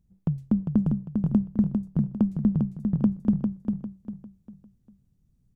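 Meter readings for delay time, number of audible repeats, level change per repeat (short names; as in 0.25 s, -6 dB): 0.4 s, 4, -9.0 dB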